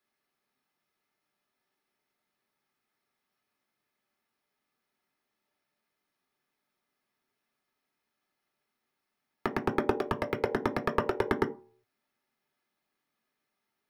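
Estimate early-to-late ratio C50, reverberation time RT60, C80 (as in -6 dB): 15.0 dB, 0.45 s, 19.5 dB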